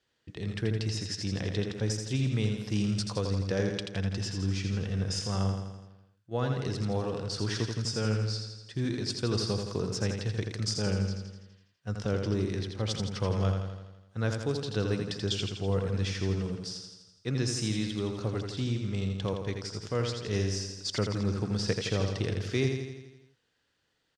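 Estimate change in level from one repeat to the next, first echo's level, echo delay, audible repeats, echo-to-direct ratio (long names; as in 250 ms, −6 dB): −4.5 dB, −5.5 dB, 83 ms, 7, −3.5 dB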